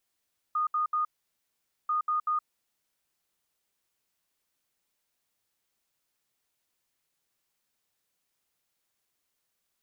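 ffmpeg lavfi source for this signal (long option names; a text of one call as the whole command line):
ffmpeg -f lavfi -i "aevalsrc='0.0596*sin(2*PI*1230*t)*clip(min(mod(mod(t,1.34),0.19),0.12-mod(mod(t,1.34),0.19))/0.005,0,1)*lt(mod(t,1.34),0.57)':duration=2.68:sample_rate=44100" out.wav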